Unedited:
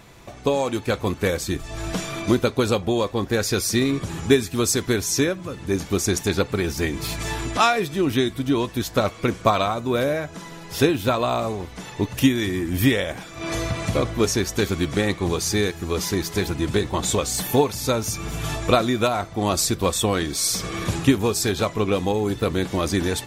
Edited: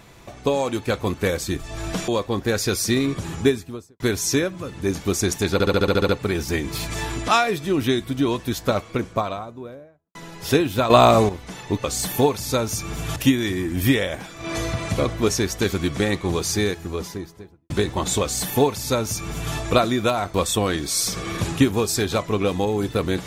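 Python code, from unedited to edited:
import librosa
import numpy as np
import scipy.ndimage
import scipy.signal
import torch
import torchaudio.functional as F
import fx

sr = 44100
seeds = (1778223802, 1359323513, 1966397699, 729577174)

y = fx.studio_fade_out(x, sr, start_s=4.15, length_s=0.7)
y = fx.studio_fade_out(y, sr, start_s=8.77, length_s=1.67)
y = fx.studio_fade_out(y, sr, start_s=15.51, length_s=1.16)
y = fx.edit(y, sr, fx.cut(start_s=2.08, length_s=0.85),
    fx.stutter(start_s=6.38, slice_s=0.07, count=9),
    fx.clip_gain(start_s=11.19, length_s=0.39, db=10.0),
    fx.duplicate(start_s=17.19, length_s=1.32, to_s=12.13),
    fx.cut(start_s=19.31, length_s=0.5), tone=tone)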